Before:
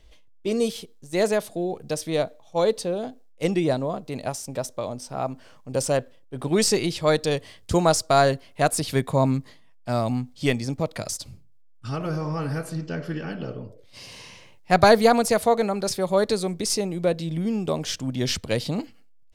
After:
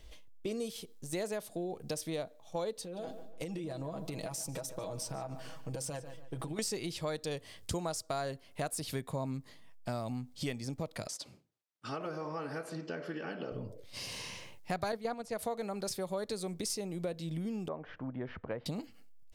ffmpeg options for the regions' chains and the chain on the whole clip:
ffmpeg -i in.wav -filter_complex "[0:a]asettb=1/sr,asplit=3[link_01][link_02][link_03];[link_01]atrim=end=2.824[link_04];[link_02]atrim=start=2.82:end=6.59,asetpts=PTS-STARTPTS,afade=type=in:duration=0.004:curve=qsin,afade=type=out:start_time=3.766:duration=0.004:curve=qsin,aecho=1:1:6.2:0.69,atrim=end_sample=166257,acompressor=threshold=-32dB:ratio=10:attack=3.2:release=140:knee=1:detection=peak,asplit=2[link_05][link_06];[link_06]adelay=145,lowpass=frequency=4000:poles=1,volume=-13.5dB,asplit=2[link_07][link_08];[link_08]adelay=145,lowpass=frequency=4000:poles=1,volume=0.34,asplit=2[link_09][link_10];[link_10]adelay=145,lowpass=frequency=4000:poles=1,volume=0.34[link_11];[link_05][link_07][link_09][link_11]amix=inputs=4:normalize=0,atrim=end_sample=166257[link_12];[link_03]atrim=start=6.586[link_13];[link_04][link_12]acrossfade=duration=0.004:curve1=hsin:curve2=qsin[link_14];[link_14][link_13]acrossfade=duration=0.004:curve1=qsin:curve2=hsin,asettb=1/sr,asplit=3[link_15][link_16][link_17];[link_15]atrim=end=11.074[link_18];[link_16]atrim=start=11.07:end=13.52,asetpts=PTS-STARTPTS,afade=type=in:duration=0.004:curve=qsin,afade=type=out:start_time=2.446:duration=0.004:curve=qsin,highpass=310,aemphasis=mode=reproduction:type=50fm[link_19];[link_17]atrim=start=13.516[link_20];[link_18][link_19]acrossfade=duration=0.004:curve1=hsin:curve2=qsin[link_21];[link_21][link_20]acrossfade=duration=0.004:curve1=qsin:curve2=hsin,asettb=1/sr,asplit=3[link_22][link_23][link_24];[link_22]atrim=end=14.924[link_25];[link_23]atrim=start=14.92:end=15.39,asetpts=PTS-STARTPTS,afade=type=in:duration=0.004:curve=qsin,afade=type=out:start_time=0.466:duration=0.004:curve=qsin,acrossover=split=8700[link_26][link_27];[link_27]acompressor=threshold=-37dB:ratio=4:attack=1:release=60[link_28];[link_26][link_28]amix=inputs=2:normalize=0,agate=range=-7dB:threshold=-19dB:ratio=16:release=100:detection=peak,highshelf=frequency=5600:gain=-11[link_29];[link_24]atrim=start=15.386[link_30];[link_25][link_29]acrossfade=duration=0.004:curve1=hsin:curve2=qsin[link_31];[link_31][link_30]acrossfade=duration=0.004:curve1=qsin:curve2=hsin,asettb=1/sr,asplit=3[link_32][link_33][link_34];[link_32]atrim=end=17.684[link_35];[link_33]atrim=start=17.68:end=18.66,asetpts=PTS-STARTPTS,afade=type=in:duration=0.004:curve=qsin,afade=type=out:start_time=0.976:duration=0.004:curve=qsin,lowpass=frequency=1600:width=0.5412,lowpass=frequency=1600:width=1.3066,lowshelf=frequency=390:gain=-11[link_36];[link_34]atrim=start=18.656[link_37];[link_35][link_36]acrossfade=duration=0.004:curve1=hsin:curve2=qsin[link_38];[link_38][link_37]acrossfade=duration=0.004:curve1=qsin:curve2=hsin,highshelf=frequency=9000:gain=7,acompressor=threshold=-37dB:ratio=4" out.wav

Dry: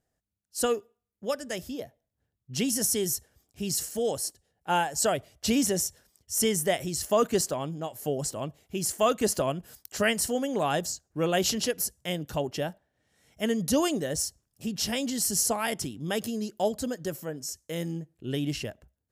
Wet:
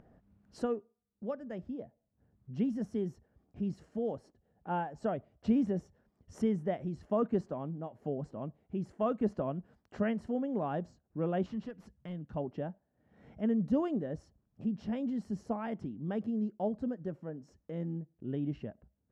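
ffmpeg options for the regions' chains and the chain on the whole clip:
ffmpeg -i in.wav -filter_complex "[0:a]asettb=1/sr,asplit=3[link_01][link_02][link_03];[link_01]atrim=end=11.464[link_04];[link_02]atrim=start=11.46:end=12.36,asetpts=PTS-STARTPTS,afade=type=in:duration=0.004:curve=qsin,afade=type=out:start_time=0.896:duration=0.004:curve=qsin,equalizer=frequency=500:width=0.58:gain=-8.5,asoftclip=type=hard:threshold=-29dB[link_05];[link_03]atrim=start=12.356[link_06];[link_04][link_05]acrossfade=duration=0.004:curve1=hsin:curve2=qsin[link_07];[link_07][link_06]acrossfade=duration=0.004:curve1=qsin:curve2=hsin,lowpass=1200,equalizer=frequency=210:width=1.7:gain=8,acompressor=mode=upward:threshold=-33dB:ratio=2.5,volume=-8dB" out.wav

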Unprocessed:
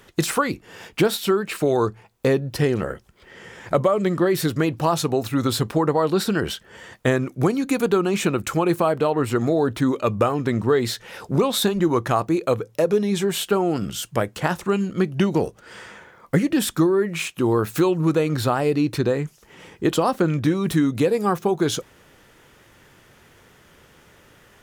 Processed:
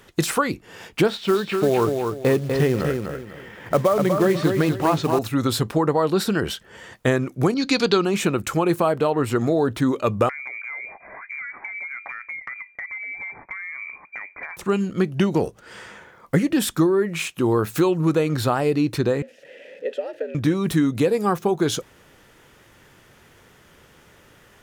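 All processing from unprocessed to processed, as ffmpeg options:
ffmpeg -i in.wav -filter_complex "[0:a]asettb=1/sr,asplit=3[link_01][link_02][link_03];[link_01]atrim=end=1.094[link_04];[link_02]atrim=start=1.09:end=5.19,asetpts=PTS-STARTPTS,afade=type=in:duration=0.004:curve=qsin,afade=type=out:start_time=4.096:duration=0.004:curve=qsin,lowpass=3600,acrusher=bits=5:mode=log:mix=0:aa=0.000001,aecho=1:1:247|494|741|988:0.562|0.169|0.0506|0.0152,atrim=end_sample=180810[link_05];[link_03]atrim=start=5.186[link_06];[link_04][link_05]acrossfade=duration=0.004:curve1=hsin:curve2=qsin[link_07];[link_07][link_06]acrossfade=duration=0.004:curve1=qsin:curve2=hsin,asettb=1/sr,asplit=3[link_08][link_09][link_10];[link_08]atrim=end=7.544[link_11];[link_09]atrim=start=7.54:end=8.05,asetpts=PTS-STARTPTS,afade=type=in:duration=0.004:curve=qsin,afade=type=out:start_time=0.506:duration=0.004:curve=qsin,lowpass=frequency=4700:width_type=q:width=5,adynamicequalizer=threshold=0.0158:dfrequency=1600:dqfactor=0.7:tfrequency=1600:tqfactor=0.7:attack=5:release=100:ratio=0.375:range=2.5:mode=boostabove:tftype=highshelf[link_12];[link_10]atrim=start=8.046[link_13];[link_11][link_12]acrossfade=duration=0.004:curve1=hsin:curve2=qsin[link_14];[link_14][link_13]acrossfade=duration=0.004:curve1=qsin:curve2=hsin,asettb=1/sr,asplit=3[link_15][link_16][link_17];[link_15]atrim=end=10.294[link_18];[link_16]atrim=start=10.29:end=14.57,asetpts=PTS-STARTPTS,afade=type=in:duration=0.004:curve=qsin,afade=type=out:start_time=4.276:duration=0.004:curve=qsin,asoftclip=type=hard:threshold=-12.5dB,lowpass=frequency=2100:width_type=q:width=0.5098,lowpass=frequency=2100:width_type=q:width=0.6013,lowpass=frequency=2100:width_type=q:width=0.9,lowpass=frequency=2100:width_type=q:width=2.563,afreqshift=-2500,acompressor=threshold=-30dB:ratio=8:attack=3.2:release=140:knee=1:detection=peak[link_19];[link_17]atrim=start=14.566[link_20];[link_18][link_19]acrossfade=duration=0.004:curve1=hsin:curve2=qsin[link_21];[link_21][link_20]acrossfade=duration=0.004:curve1=qsin:curve2=hsin,asettb=1/sr,asplit=3[link_22][link_23][link_24];[link_22]atrim=end=19.224[link_25];[link_23]atrim=start=19.22:end=20.35,asetpts=PTS-STARTPTS,afade=type=in:duration=0.004:curve=qsin,afade=type=out:start_time=1.126:duration=0.004:curve=qsin,aeval=exprs='val(0)+0.5*0.0335*sgn(val(0))':channel_layout=same,afreqshift=91,asplit=3[link_26][link_27][link_28];[link_26]bandpass=frequency=530:width_type=q:width=8,volume=0dB[link_29];[link_27]bandpass=frequency=1840:width_type=q:width=8,volume=-6dB[link_30];[link_28]bandpass=frequency=2480:width_type=q:width=8,volume=-9dB[link_31];[link_29][link_30][link_31]amix=inputs=3:normalize=0[link_32];[link_24]atrim=start=20.346[link_33];[link_25][link_32]acrossfade=duration=0.004:curve1=hsin:curve2=qsin[link_34];[link_34][link_33]acrossfade=duration=0.004:curve1=qsin:curve2=hsin" out.wav

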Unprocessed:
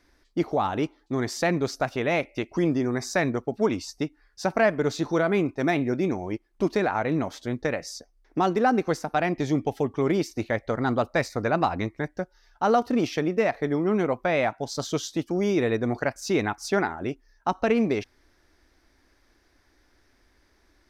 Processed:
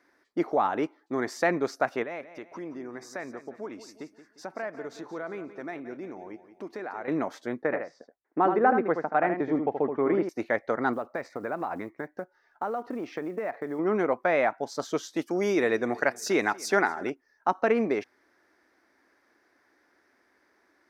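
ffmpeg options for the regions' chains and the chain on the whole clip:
ffmpeg -i in.wav -filter_complex "[0:a]asettb=1/sr,asplit=3[link_01][link_02][link_03];[link_01]atrim=end=2.034[link_04];[link_02]atrim=start=2.03:end=7.08,asetpts=PTS-STARTPTS,afade=type=in:duration=0.004:curve=qsin,afade=type=out:start_time=5.046:duration=0.004:curve=qsin,acompressor=threshold=-42dB:ratio=2:attack=3.2:release=140:knee=1:detection=peak,aecho=1:1:176|352|528|704:0.224|0.0918|0.0376|0.0154,atrim=end_sample=222705[link_05];[link_03]atrim=start=7.076[link_06];[link_04][link_05]acrossfade=duration=0.004:curve1=hsin:curve2=qsin[link_07];[link_07][link_06]acrossfade=duration=0.004:curve1=qsin:curve2=hsin,asettb=1/sr,asplit=3[link_08][link_09][link_10];[link_08]atrim=end=7.624[link_11];[link_09]atrim=start=7.62:end=10.29,asetpts=PTS-STARTPTS,afade=type=in:duration=0.004:curve=qsin,afade=type=out:start_time=2.666:duration=0.004:curve=qsin,agate=range=-33dB:threshold=-53dB:ratio=3:release=100:detection=peak,lowpass=1900,aecho=1:1:77:0.447,atrim=end_sample=117747[link_12];[link_10]atrim=start=10.286[link_13];[link_11][link_12]acrossfade=duration=0.004:curve1=hsin:curve2=qsin[link_14];[link_14][link_13]acrossfade=duration=0.004:curve1=qsin:curve2=hsin,asettb=1/sr,asplit=3[link_15][link_16][link_17];[link_15]atrim=end=10.934[link_18];[link_16]atrim=start=10.93:end=13.79,asetpts=PTS-STARTPTS,afade=type=in:duration=0.004:curve=qsin,afade=type=out:start_time=2.856:duration=0.004:curve=qsin,lowpass=frequency=2100:poles=1,acrusher=bits=8:mode=log:mix=0:aa=0.000001,acompressor=threshold=-26dB:ratio=12:attack=3.2:release=140:knee=1:detection=peak[link_19];[link_17]atrim=start=13.786[link_20];[link_18][link_19]acrossfade=duration=0.004:curve1=hsin:curve2=qsin[link_21];[link_21][link_20]acrossfade=duration=0.004:curve1=qsin:curve2=hsin,asettb=1/sr,asplit=3[link_22][link_23][link_24];[link_22]atrim=end=15.164[link_25];[link_23]atrim=start=15.16:end=17.1,asetpts=PTS-STARTPTS,afade=type=in:duration=0.004:curve=qsin,afade=type=out:start_time=1.936:duration=0.004:curve=qsin,highshelf=frequency=3000:gain=10,aecho=1:1:241|482|723:0.0708|0.0319|0.0143,atrim=end_sample=85554[link_26];[link_24]atrim=start=17.096[link_27];[link_25][link_26]acrossfade=duration=0.004:curve1=hsin:curve2=qsin[link_28];[link_28][link_27]acrossfade=duration=0.004:curve1=qsin:curve2=hsin,highpass=280,highshelf=frequency=2400:width_type=q:width=1.5:gain=-6.5" out.wav

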